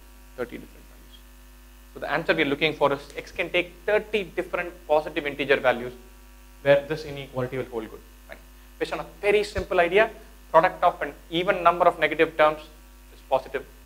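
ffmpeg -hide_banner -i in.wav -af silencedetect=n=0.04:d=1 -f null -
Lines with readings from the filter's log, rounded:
silence_start: 0.56
silence_end: 1.97 | silence_duration: 1.41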